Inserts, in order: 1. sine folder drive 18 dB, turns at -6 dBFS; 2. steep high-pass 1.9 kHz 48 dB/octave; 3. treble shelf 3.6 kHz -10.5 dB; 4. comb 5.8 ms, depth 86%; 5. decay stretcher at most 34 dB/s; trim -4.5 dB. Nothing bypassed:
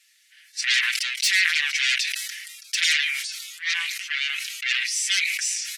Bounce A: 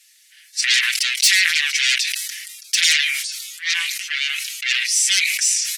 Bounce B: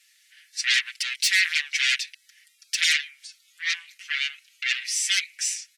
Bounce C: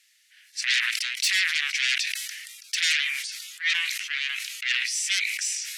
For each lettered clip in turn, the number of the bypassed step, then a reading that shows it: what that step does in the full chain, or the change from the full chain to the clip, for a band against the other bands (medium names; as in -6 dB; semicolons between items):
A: 3, 8 kHz band +5.0 dB; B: 5, 1 kHz band -2.0 dB; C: 4, loudness change -2.5 LU